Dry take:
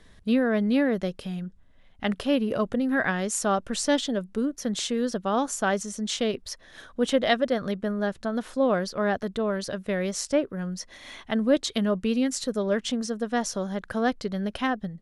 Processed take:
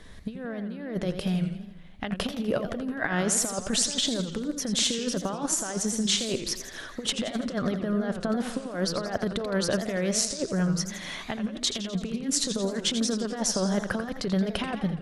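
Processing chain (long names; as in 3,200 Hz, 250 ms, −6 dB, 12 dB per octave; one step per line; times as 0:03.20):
compressor whose output falls as the input rises −29 dBFS, ratio −0.5
feedback echo with a swinging delay time 84 ms, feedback 57%, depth 185 cents, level −9 dB
level +1.5 dB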